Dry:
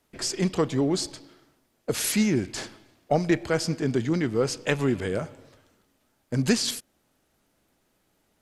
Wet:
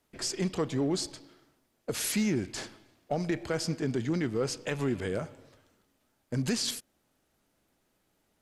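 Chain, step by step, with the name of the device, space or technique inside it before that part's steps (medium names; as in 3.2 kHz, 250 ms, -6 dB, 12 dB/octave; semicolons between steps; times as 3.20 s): limiter into clipper (peak limiter -16 dBFS, peak gain reduction 7 dB; hard clipper -17 dBFS, distortion -34 dB); trim -4 dB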